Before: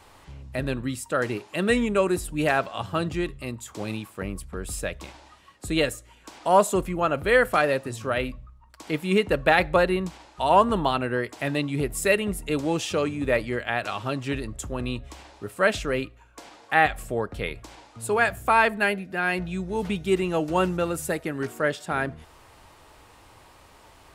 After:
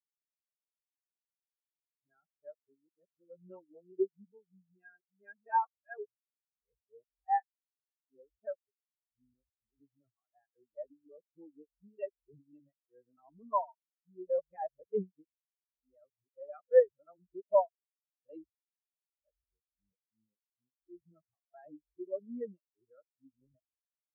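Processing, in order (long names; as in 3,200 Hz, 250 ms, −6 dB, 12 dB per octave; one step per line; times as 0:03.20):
played backwards from end to start
low-pass that shuts in the quiet parts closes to 960 Hz, open at −16.5 dBFS
every bin expanded away from the loudest bin 4 to 1
level −8.5 dB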